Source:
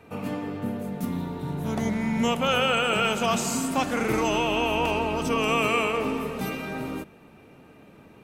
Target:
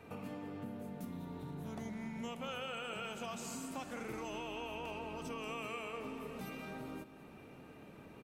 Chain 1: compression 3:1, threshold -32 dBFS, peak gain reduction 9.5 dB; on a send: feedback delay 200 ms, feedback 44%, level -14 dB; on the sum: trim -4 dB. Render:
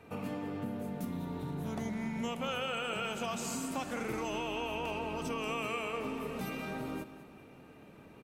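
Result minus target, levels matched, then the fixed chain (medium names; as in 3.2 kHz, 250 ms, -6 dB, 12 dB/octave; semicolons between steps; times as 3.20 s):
compression: peak gain reduction -6.5 dB
compression 3:1, threshold -42 dBFS, peak gain reduction 16.5 dB; on a send: feedback delay 200 ms, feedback 44%, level -14 dB; on the sum: trim -4 dB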